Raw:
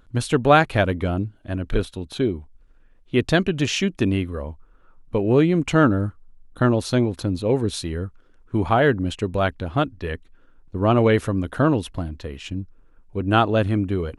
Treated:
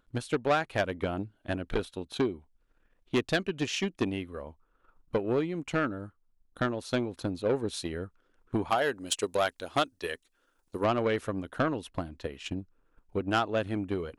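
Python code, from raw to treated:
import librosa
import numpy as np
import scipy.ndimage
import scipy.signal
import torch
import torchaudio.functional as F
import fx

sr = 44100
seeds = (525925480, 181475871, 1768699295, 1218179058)

y = fx.bass_treble(x, sr, bass_db=-10, treble_db=15, at=(8.69, 10.83), fade=0.02)
y = fx.transient(y, sr, attack_db=10, sustain_db=-2)
y = fx.rider(y, sr, range_db=3, speed_s=0.5)
y = 10.0 ** (-9.0 / 20.0) * np.tanh(y / 10.0 ** (-9.0 / 20.0))
y = fx.low_shelf(y, sr, hz=180.0, db=-10.5)
y = y * librosa.db_to_amplitude(-8.5)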